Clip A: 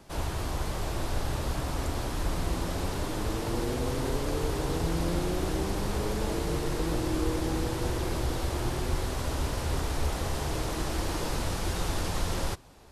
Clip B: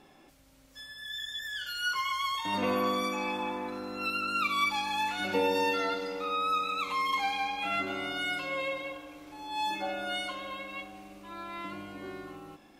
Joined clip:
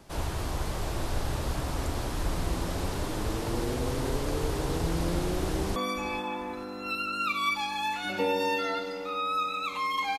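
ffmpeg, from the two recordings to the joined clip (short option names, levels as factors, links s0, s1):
-filter_complex "[0:a]apad=whole_dur=10.18,atrim=end=10.18,atrim=end=5.762[s0];[1:a]atrim=start=2.908:end=7.33[s1];[s0][s1]acrossfade=d=0.004:c1=hsin:c2=hsin,asplit=2[s2][s3];[s3]afade=t=in:st=5.51:d=0.01,afade=t=out:st=5.76:d=0.01,aecho=0:1:440|880|1320:0.177828|0.0622398|0.0217839[s4];[s2][s4]amix=inputs=2:normalize=0"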